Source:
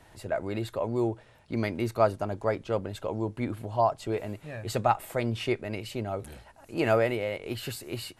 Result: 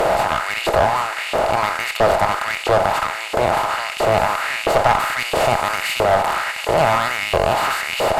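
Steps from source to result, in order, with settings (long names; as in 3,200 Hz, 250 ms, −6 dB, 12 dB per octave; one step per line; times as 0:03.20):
compressor on every frequency bin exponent 0.2
0:05.19–0:06.04: high-shelf EQ 5,600 Hz +5 dB
in parallel at −1 dB: brickwall limiter −10.5 dBFS, peak gain reduction 7.5 dB
on the sum: auto-filter high-pass saw up 1.5 Hz 440–2,900 Hz
asymmetric clip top −15 dBFS
level −2.5 dB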